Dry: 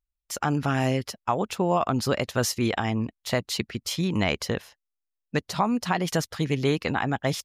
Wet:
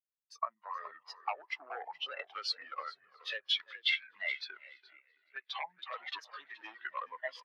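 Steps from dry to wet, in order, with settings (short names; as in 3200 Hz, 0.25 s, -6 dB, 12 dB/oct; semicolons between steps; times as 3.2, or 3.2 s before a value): repeated pitch sweeps -9 st, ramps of 1.031 s; AGC gain up to 8 dB; feedback echo 0.335 s, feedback 56%, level -17 dB; wavefolder -12 dBFS; compressor 12:1, threshold -24 dBFS, peak gain reduction 10 dB; HPF 1100 Hz 12 dB/oct; bell 7800 Hz -5.5 dB 1.3 oct; frequency-shifting echo 0.423 s, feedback 39%, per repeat -69 Hz, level -8 dB; spectral expander 2.5:1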